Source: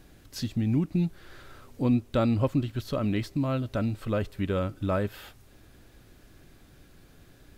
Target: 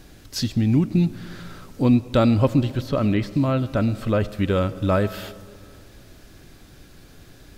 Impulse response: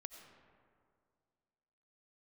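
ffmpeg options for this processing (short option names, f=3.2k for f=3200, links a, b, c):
-filter_complex "[0:a]equalizer=f=5.2k:t=o:w=1.1:g=4,asplit=2[a][b];[1:a]atrim=start_sample=2205[c];[b][c]afir=irnorm=-1:irlink=0,volume=-2dB[d];[a][d]amix=inputs=2:normalize=0,asettb=1/sr,asplit=3[e][f][g];[e]atrim=end=2.704[h];[f]atrim=start=2.7:end=4.33,asetpts=PTS-STARTPTS,afade=t=in:d=0.004:c=qsin,afade=t=out:st=1.626:d=0.004:c=qsin,acrossover=split=2700[i][j];[j]acompressor=threshold=-45dB:ratio=4:attack=1:release=60[k];[i][k]amix=inputs=2:normalize=0[l];[g]atrim=start=4.326[m];[h][l]acrossfade=d=0.004:c1=hsin:c2=qsin[n];[n][m]acrossfade=d=0.004:c1=qsin:c2=hsin,volume=4dB"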